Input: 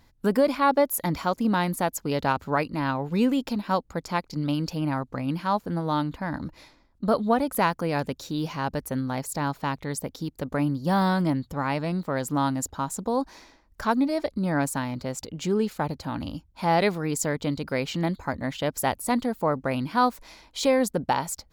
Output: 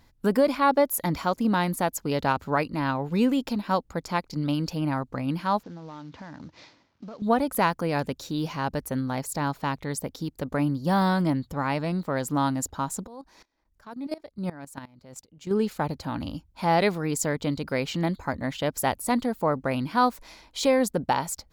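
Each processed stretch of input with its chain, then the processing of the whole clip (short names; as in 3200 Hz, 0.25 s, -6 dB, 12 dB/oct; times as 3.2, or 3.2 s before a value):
5.63–7.22 CVSD 32 kbps + HPF 87 Hz 24 dB/oct + compressor 12:1, threshold -37 dBFS
13.07–15.51 level quantiser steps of 13 dB + dB-ramp tremolo swelling 2.8 Hz, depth 20 dB
whole clip: dry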